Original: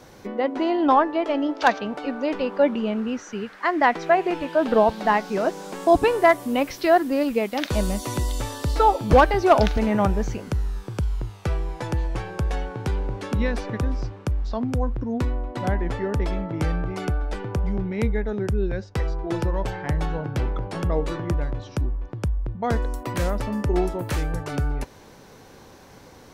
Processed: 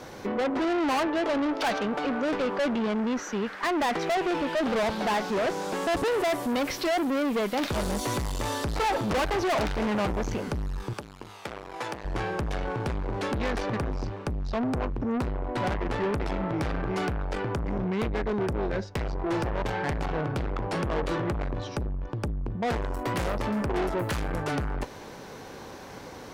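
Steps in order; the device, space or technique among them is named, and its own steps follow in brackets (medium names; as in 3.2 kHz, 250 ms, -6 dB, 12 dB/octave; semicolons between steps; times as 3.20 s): tube preamp driven hard (valve stage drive 31 dB, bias 0.4; bass shelf 180 Hz -6 dB; treble shelf 5.3 kHz -6 dB); 10.93–12.05 s: high-pass 620 Hz 6 dB/octave; trim +8 dB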